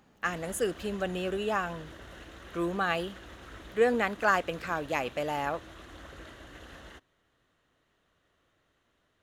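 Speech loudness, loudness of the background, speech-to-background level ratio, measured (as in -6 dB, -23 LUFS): -31.0 LUFS, -48.5 LUFS, 17.5 dB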